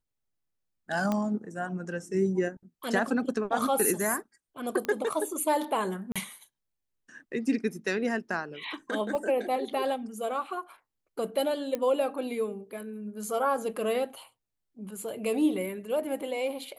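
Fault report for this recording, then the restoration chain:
1.12 s: pop -16 dBFS
4.85 s: pop -18 dBFS
6.12–6.16 s: dropout 36 ms
9.15 s: dropout 2.1 ms
11.75 s: pop -18 dBFS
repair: de-click; interpolate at 6.12 s, 36 ms; interpolate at 9.15 s, 2.1 ms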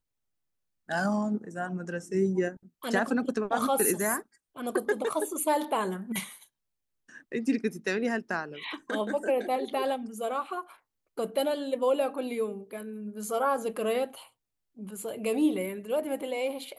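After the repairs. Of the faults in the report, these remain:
1.12 s: pop

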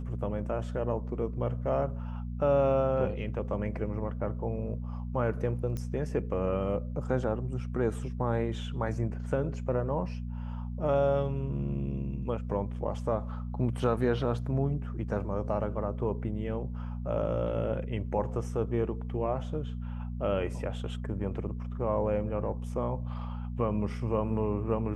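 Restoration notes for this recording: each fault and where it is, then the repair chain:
hum 60 Hz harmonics 4 -36 dBFS
5.77 s: pop -23 dBFS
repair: de-click; de-hum 60 Hz, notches 4

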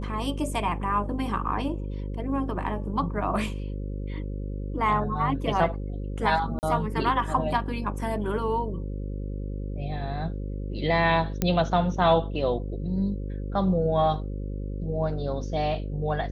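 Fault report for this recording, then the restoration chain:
buzz 50 Hz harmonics 11 -32 dBFS
6.59–6.63 s: dropout 39 ms
11.42 s: pop -10 dBFS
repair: de-click; de-hum 50 Hz, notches 11; interpolate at 6.59 s, 39 ms

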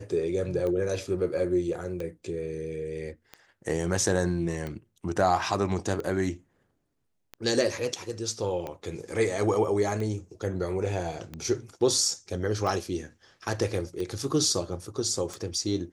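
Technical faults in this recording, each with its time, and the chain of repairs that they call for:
tick 45 rpm -22 dBFS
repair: de-click

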